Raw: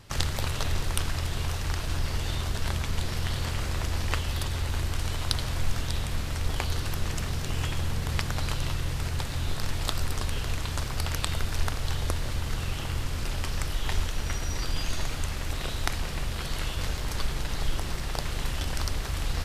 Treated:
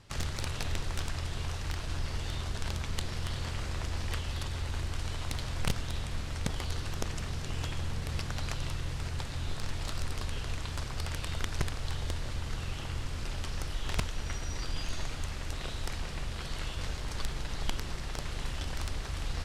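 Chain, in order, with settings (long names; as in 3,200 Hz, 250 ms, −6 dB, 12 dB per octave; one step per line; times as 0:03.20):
wrap-around overflow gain 16.5 dB
low-pass filter 9,200 Hz 12 dB per octave
level −5.5 dB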